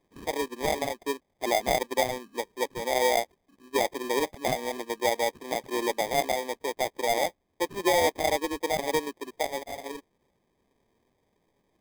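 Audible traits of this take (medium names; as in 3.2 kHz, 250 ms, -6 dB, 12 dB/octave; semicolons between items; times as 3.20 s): aliases and images of a low sample rate 1.4 kHz, jitter 0%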